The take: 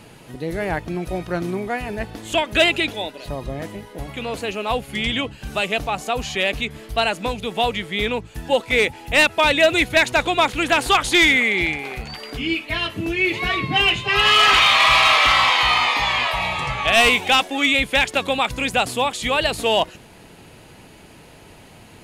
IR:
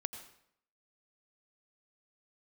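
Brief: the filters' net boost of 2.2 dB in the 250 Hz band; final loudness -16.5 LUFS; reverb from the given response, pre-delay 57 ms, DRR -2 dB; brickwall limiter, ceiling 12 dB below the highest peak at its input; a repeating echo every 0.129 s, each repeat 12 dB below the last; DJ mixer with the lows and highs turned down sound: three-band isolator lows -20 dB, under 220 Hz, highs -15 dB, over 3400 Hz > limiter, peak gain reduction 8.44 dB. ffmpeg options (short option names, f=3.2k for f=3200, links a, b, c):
-filter_complex "[0:a]equalizer=f=250:t=o:g=6.5,alimiter=limit=-17dB:level=0:latency=1,aecho=1:1:129|258|387:0.251|0.0628|0.0157,asplit=2[a][b];[1:a]atrim=start_sample=2205,adelay=57[c];[b][c]afir=irnorm=-1:irlink=0,volume=2.5dB[d];[a][d]amix=inputs=2:normalize=0,acrossover=split=220 3400:gain=0.1 1 0.178[e][f][g];[e][f][g]amix=inputs=3:normalize=0,volume=9dB,alimiter=limit=-7.5dB:level=0:latency=1"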